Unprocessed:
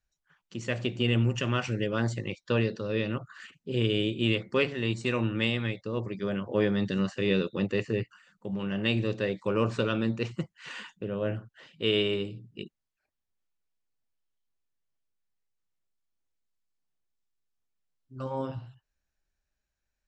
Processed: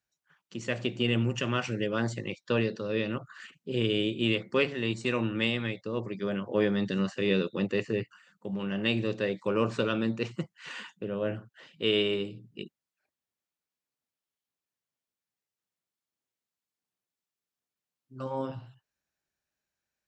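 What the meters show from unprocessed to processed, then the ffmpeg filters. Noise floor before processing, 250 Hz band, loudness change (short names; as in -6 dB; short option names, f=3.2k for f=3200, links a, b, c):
-84 dBFS, -0.5 dB, -0.5 dB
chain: -af "highpass=130"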